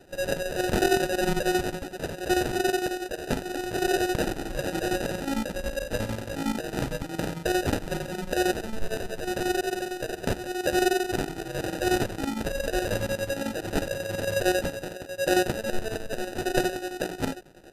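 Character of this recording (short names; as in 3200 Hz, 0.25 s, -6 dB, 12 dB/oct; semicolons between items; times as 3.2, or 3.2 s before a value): phasing stages 8, 0.86 Hz, lowest notch 790–4000 Hz; aliases and images of a low sample rate 1100 Hz, jitter 0%; chopped level 11 Hz, depth 60%, duty 70%; MP2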